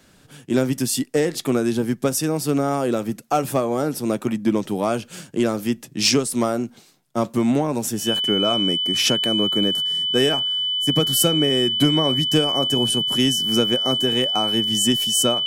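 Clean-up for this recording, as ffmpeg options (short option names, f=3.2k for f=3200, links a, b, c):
-af "bandreject=f=3k:w=30"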